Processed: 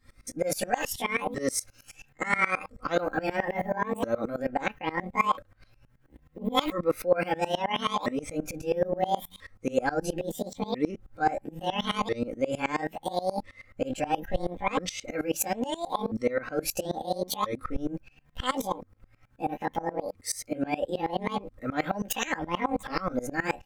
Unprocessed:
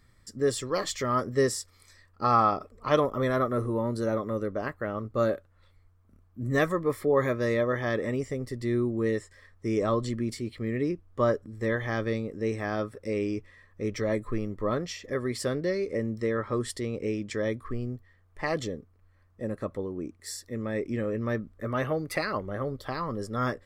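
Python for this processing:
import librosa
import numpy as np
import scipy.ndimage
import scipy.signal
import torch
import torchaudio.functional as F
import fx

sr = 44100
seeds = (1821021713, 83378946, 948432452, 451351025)

p1 = fx.pitch_ramps(x, sr, semitones=12.0, every_ms=1343)
p2 = fx.over_compress(p1, sr, threshold_db=-36.0, ratio=-1.0)
p3 = p1 + F.gain(torch.from_numpy(p2), -1.0).numpy()
p4 = p3 + 0.59 * np.pad(p3, (int(3.8 * sr / 1000.0), 0))[:len(p3)]
p5 = fx.tremolo_decay(p4, sr, direction='swelling', hz=9.4, depth_db=23)
y = F.gain(torch.from_numpy(p5), 3.5).numpy()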